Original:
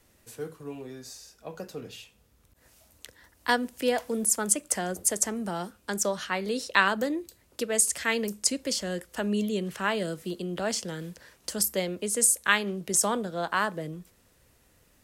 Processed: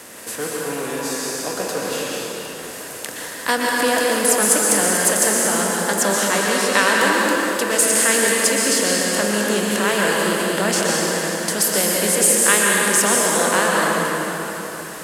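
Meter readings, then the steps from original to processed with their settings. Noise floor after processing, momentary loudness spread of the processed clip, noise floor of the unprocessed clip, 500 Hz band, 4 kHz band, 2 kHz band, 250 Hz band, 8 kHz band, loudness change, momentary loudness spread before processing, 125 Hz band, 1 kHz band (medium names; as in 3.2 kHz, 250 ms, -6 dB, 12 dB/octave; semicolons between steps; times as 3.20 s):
-33 dBFS, 12 LU, -64 dBFS, +11.5 dB, +12.0 dB, +12.0 dB, +9.0 dB, +11.0 dB, +10.0 dB, 17 LU, +8.0 dB, +11.0 dB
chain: spectral levelling over time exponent 0.6; peaking EQ 12 kHz +2.5 dB 0.63 oct; in parallel at -6.5 dB: saturation -19 dBFS, distortion -10 dB; on the sum: high-pass 170 Hz 6 dB/octave; plate-style reverb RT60 3.8 s, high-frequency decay 0.75×, pre-delay 105 ms, DRR -3.5 dB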